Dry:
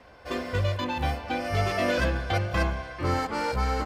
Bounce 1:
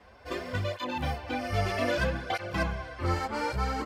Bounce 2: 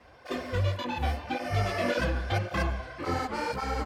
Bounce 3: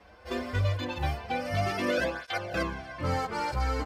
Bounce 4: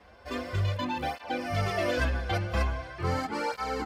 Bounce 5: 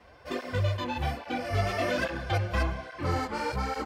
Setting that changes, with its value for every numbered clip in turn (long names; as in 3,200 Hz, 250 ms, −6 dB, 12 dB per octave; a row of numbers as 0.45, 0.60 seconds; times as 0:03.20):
through-zero flanger with one copy inverted, nulls at: 0.63, 1.8, 0.22, 0.42, 1.2 Hertz